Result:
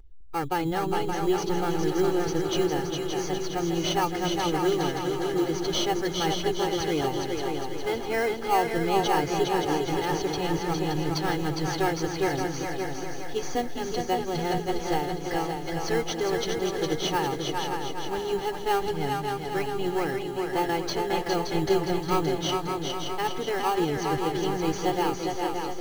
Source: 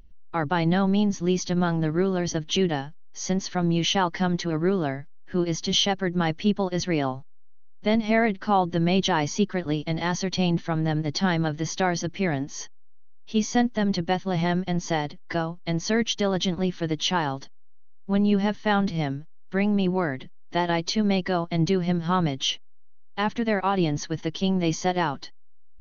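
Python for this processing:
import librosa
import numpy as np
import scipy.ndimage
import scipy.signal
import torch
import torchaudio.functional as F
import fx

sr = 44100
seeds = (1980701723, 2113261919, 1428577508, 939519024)

p1 = x + 0.97 * np.pad(x, (int(2.4 * sr / 1000.0), 0))[:len(x)]
p2 = fx.sample_hold(p1, sr, seeds[0], rate_hz=3600.0, jitter_pct=0)
p3 = p1 + (p2 * 10.0 ** (-6.5 / 20.0))
p4 = fx.echo_split(p3, sr, split_hz=320.0, low_ms=204, high_ms=409, feedback_pct=52, wet_db=-4.0)
p5 = fx.echo_crushed(p4, sr, ms=572, feedback_pct=35, bits=7, wet_db=-5.5)
y = p5 * 10.0 ** (-8.5 / 20.0)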